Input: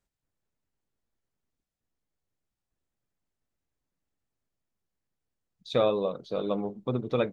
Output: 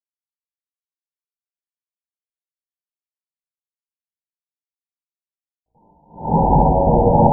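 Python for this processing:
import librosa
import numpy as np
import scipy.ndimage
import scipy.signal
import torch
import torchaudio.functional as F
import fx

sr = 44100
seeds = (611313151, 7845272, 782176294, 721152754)

y = fx.peak_eq(x, sr, hz=320.0, db=fx.steps((0.0, -12.0), (6.11, -2.0)), octaves=1.4)
y = y * np.sin(2.0 * np.pi * 350.0 * np.arange(len(y)) / sr)
y = fx.add_hum(y, sr, base_hz=60, snr_db=15)
y = fx.fuzz(y, sr, gain_db=40.0, gate_db=-46.0)
y = fx.brickwall_lowpass(y, sr, high_hz=1000.0)
y = fx.echo_thinned(y, sr, ms=70, feedback_pct=78, hz=150.0, wet_db=-8.0)
y = fx.room_shoebox(y, sr, seeds[0], volume_m3=210.0, walls='hard', distance_m=0.63)
y = fx.attack_slew(y, sr, db_per_s=150.0)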